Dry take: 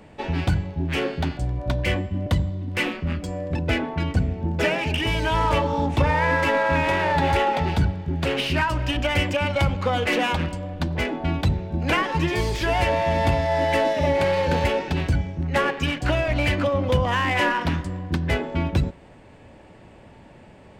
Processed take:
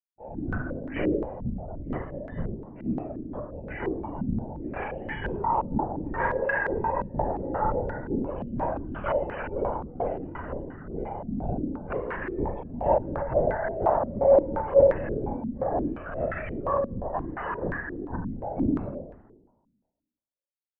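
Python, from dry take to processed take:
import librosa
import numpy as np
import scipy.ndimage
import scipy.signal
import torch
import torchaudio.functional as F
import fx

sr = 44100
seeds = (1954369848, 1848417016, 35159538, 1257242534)

p1 = fx.cheby_harmonics(x, sr, harmonics=(7, 8), levels_db=(-27, -20), full_scale_db=-6.5)
p2 = fx.transient(p1, sr, attack_db=-7, sustain_db=5)
p3 = (np.mod(10.0 ** (15.5 / 20.0) * p2 + 1.0, 2.0) - 1.0) / 10.0 ** (15.5 / 20.0)
p4 = p2 + F.gain(torch.from_numpy(p3), -12.0).numpy()
p5 = fx.quant_dither(p4, sr, seeds[0], bits=6, dither='none')
p6 = fx.spec_topn(p5, sr, count=32)
p7 = fx.chopper(p6, sr, hz=2.1, depth_pct=65, duty_pct=15)
p8 = fx.clip_asym(p7, sr, top_db=-21.5, bottom_db=-15.5)
p9 = p8 + fx.room_flutter(p8, sr, wall_m=8.0, rt60_s=0.63, dry=0)
p10 = fx.rev_fdn(p9, sr, rt60_s=1.3, lf_ratio=0.95, hf_ratio=0.6, size_ms=11.0, drr_db=3.0)
p11 = fx.lpc_vocoder(p10, sr, seeds[1], excitation='whisper', order=16)
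p12 = fx.filter_held_lowpass(p11, sr, hz=5.7, low_hz=230.0, high_hz=1700.0)
y = F.gain(torch.from_numpy(p12), -7.5).numpy()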